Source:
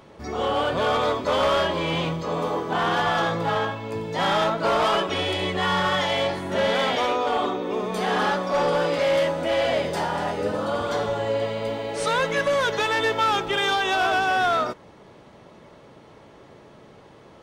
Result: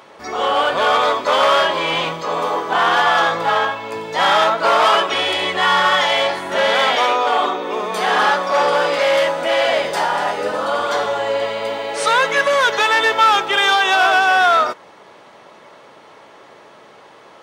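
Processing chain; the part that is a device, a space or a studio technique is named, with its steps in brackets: filter by subtraction (in parallel: low-pass 1.1 kHz 12 dB/octave + polarity flip); on the sum: trim +7.5 dB

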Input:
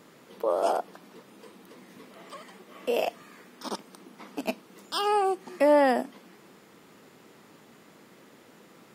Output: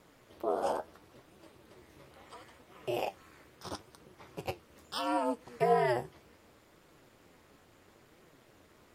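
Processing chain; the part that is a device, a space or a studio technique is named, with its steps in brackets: alien voice (ring modulator 120 Hz; flange 0.73 Hz, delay 5.2 ms, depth 9.4 ms, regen +57%)

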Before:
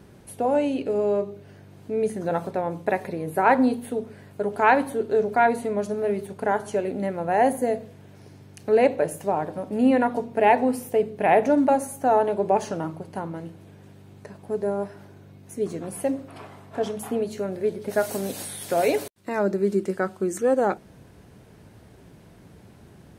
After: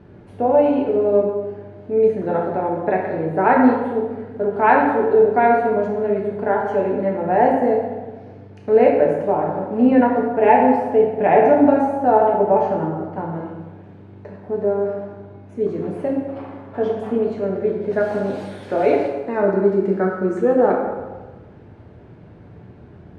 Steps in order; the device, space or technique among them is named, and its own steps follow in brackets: phone in a pocket (low-pass 3.3 kHz 12 dB/octave; treble shelf 2.1 kHz -9 dB); 12.29–13.19 s: treble shelf 3.8 kHz -8.5 dB; plate-style reverb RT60 1.3 s, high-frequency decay 0.65×, DRR -1.5 dB; trim +2.5 dB

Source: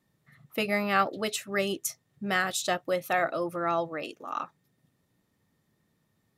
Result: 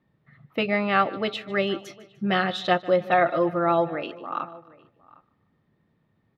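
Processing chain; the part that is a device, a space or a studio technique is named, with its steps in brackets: 1.75–3.95 s: comb 5.7 ms, depth 68%; dynamic bell 3.5 kHz, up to +7 dB, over -48 dBFS, Q 1.8; shout across a valley (distance through air 350 m; echo from a far wall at 130 m, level -22 dB); feedback delay 150 ms, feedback 44%, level -19.5 dB; trim +5 dB

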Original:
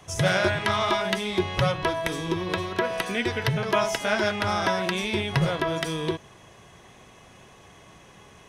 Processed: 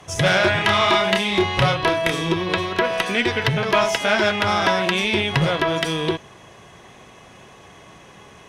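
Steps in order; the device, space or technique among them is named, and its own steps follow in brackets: tube preamp driven hard (valve stage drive 16 dB, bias 0.3; bass shelf 110 Hz -5.5 dB; treble shelf 6.1 kHz -5 dB); dynamic bell 2.9 kHz, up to +4 dB, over -43 dBFS, Q 1; 0.51–2.33 s: doubling 30 ms -4.5 dB; trim +7 dB

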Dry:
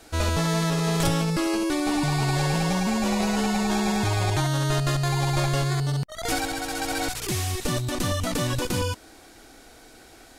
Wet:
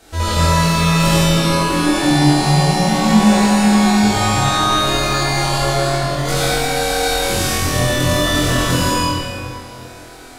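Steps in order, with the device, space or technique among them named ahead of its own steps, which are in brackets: tunnel (flutter echo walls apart 4 m, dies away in 0.67 s; reverberation RT60 2.8 s, pre-delay 57 ms, DRR -7 dB)

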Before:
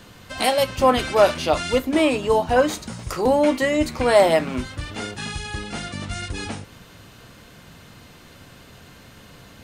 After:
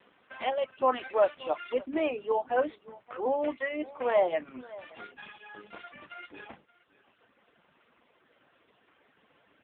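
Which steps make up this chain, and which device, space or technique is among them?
3.02–4.63 s: high-pass 230 Hz -> 110 Hz 12 dB/octave; reverb removal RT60 1.8 s; satellite phone (band-pass 330–3100 Hz; delay 574 ms -20 dB; trim -7.5 dB; AMR-NB 5.9 kbps 8 kHz)

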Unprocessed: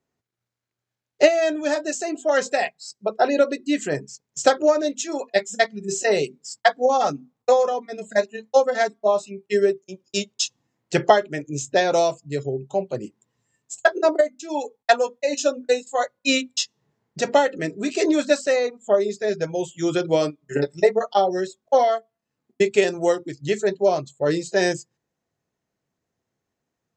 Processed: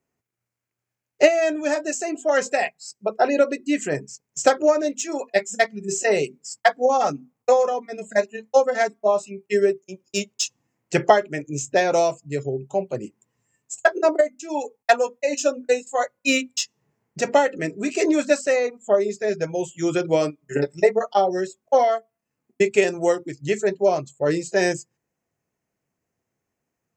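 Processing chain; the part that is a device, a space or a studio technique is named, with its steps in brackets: exciter from parts (in parallel at -5 dB: high-pass 2.2 kHz 24 dB/octave + saturation -16.5 dBFS, distortion -18 dB + high-pass 2.1 kHz 24 dB/octave)

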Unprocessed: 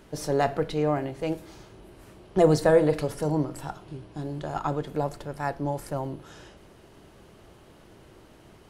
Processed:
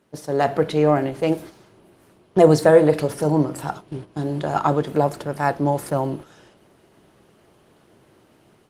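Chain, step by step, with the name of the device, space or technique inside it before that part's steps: video call (high-pass 120 Hz 12 dB/octave; level rider gain up to 8.5 dB; gate -34 dBFS, range -10 dB; trim +1 dB; Opus 24 kbps 48 kHz)

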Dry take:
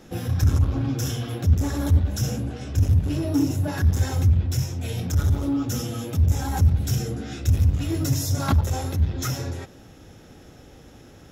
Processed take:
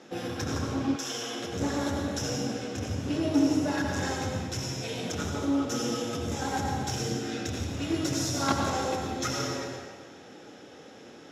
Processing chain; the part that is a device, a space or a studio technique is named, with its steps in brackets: supermarket ceiling speaker (band-pass 280–6500 Hz; reverberation RT60 1.5 s, pre-delay 80 ms, DRR 1 dB); 0.95–1.54 s: high-pass 1.1 kHz -> 310 Hz 6 dB/octave

